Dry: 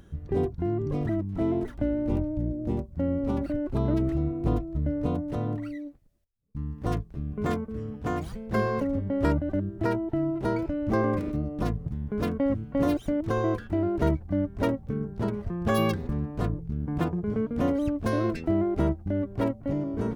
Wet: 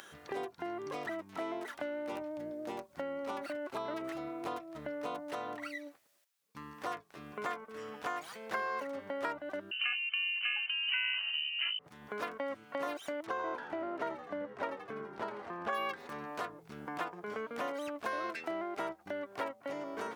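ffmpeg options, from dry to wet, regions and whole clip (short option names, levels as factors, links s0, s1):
-filter_complex "[0:a]asettb=1/sr,asplit=3[s0][s1][s2];[s0]atrim=end=9.714[s3];[s1]atrim=start=9.71:end=11.79,asetpts=PTS-STARTPTS,afade=t=in:d=0.004:c=qsin,afade=t=out:st=2.076:d=0.004:c=qsin,equalizer=f=1600:w=5.3:g=3.5,lowpass=f=2600:t=q:w=0.5098,lowpass=f=2600:t=q:w=0.6013,lowpass=f=2600:t=q:w=0.9,lowpass=f=2600:t=q:w=2.563,afreqshift=-3100[s4];[s2]atrim=start=11.786[s5];[s3][s4]acrossfade=d=0.004:c1=hsin:c2=qsin[s6];[s6][s5]acrossfade=d=0.004:c1=qsin:c2=hsin,asettb=1/sr,asplit=3[s7][s8][s9];[s7]atrim=end=13.264[s10];[s8]atrim=start=13.26:end=15.73,asetpts=PTS-STARTPTS,afade=t=in:d=0.004:c=qsin,afade=t=out:st=2.466:d=0.004:c=qsin,lowpass=f=1500:p=1,asplit=8[s11][s12][s13][s14][s15][s16][s17][s18];[s12]adelay=83,afreqshift=-80,volume=0.282[s19];[s13]adelay=166,afreqshift=-160,volume=0.17[s20];[s14]adelay=249,afreqshift=-240,volume=0.101[s21];[s15]adelay=332,afreqshift=-320,volume=0.061[s22];[s16]adelay=415,afreqshift=-400,volume=0.0367[s23];[s17]adelay=498,afreqshift=-480,volume=0.0219[s24];[s18]adelay=581,afreqshift=-560,volume=0.0132[s25];[s11][s19][s20][s21][s22][s23][s24][s25]amix=inputs=8:normalize=0,atrim=end_sample=108927[s26];[s9]atrim=start=15.726[s27];[s10][s26]acrossfade=d=0.004:c1=hsin:c2=qsin[s28];[s28][s27]acrossfade=d=0.004:c1=qsin:c2=hsin,acrossover=split=2700[s29][s30];[s30]acompressor=threshold=0.002:ratio=4:attack=1:release=60[s31];[s29][s31]amix=inputs=2:normalize=0,highpass=1000,acompressor=threshold=0.002:ratio=2.5,volume=4.73"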